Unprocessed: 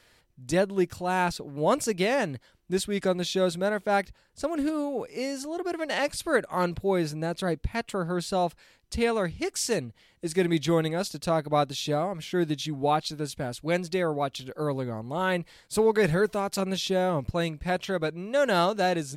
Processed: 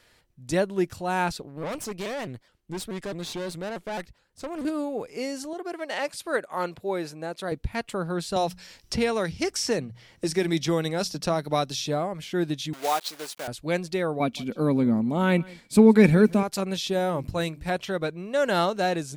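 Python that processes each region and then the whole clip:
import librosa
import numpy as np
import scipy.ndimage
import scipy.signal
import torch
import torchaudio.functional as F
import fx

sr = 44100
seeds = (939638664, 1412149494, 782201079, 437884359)

y = fx.chain(x, sr, fx.tube_stage(drive_db=29.0, bias=0.7),
    fx.vibrato_shape(shape='saw_up', rate_hz=4.7, depth_cents=160.0), at=(1.42, 4.65))
y = fx.chain(y, sr, fx.highpass(hz=700.0, slope=6),
    fx.tilt_shelf(db=3.5, hz=1100.0), at=(5.53, 7.52))
y = fx.chain(y, sr, fx.peak_eq(hz=5500.0, db=10.0, octaves=0.25),
    fx.hum_notches(base_hz=60, count=3),
    fx.band_squash(depth_pct=70), at=(8.36, 11.86))
y = fx.chain(y, sr, fx.block_float(bits=3),
    fx.highpass(hz=500.0, slope=12), at=(12.73, 13.48))
y = fx.chain(y, sr, fx.small_body(hz=(230.0, 2300.0), ring_ms=45, db=17),
    fx.echo_single(ms=168, db=-23.0), at=(14.2, 16.43))
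y = fx.chain(y, sr, fx.high_shelf(hz=7300.0, db=7.0),
    fx.hum_notches(base_hz=50, count=7), at=(16.93, 17.7))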